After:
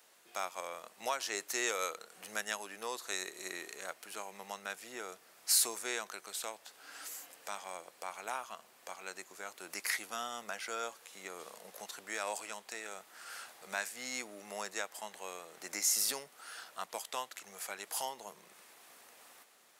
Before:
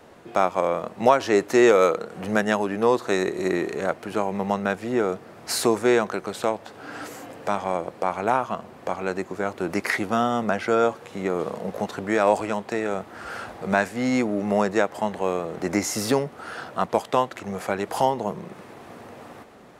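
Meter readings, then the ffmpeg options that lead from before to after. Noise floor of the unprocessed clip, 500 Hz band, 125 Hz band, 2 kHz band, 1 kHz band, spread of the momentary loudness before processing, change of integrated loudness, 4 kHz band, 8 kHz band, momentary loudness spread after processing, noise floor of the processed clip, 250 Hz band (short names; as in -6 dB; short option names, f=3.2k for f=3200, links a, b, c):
-46 dBFS, -23.0 dB, under -30 dB, -11.5 dB, -17.5 dB, 13 LU, -14.0 dB, -5.0 dB, 0.0 dB, 15 LU, -63 dBFS, -28.0 dB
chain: -af "aderivative"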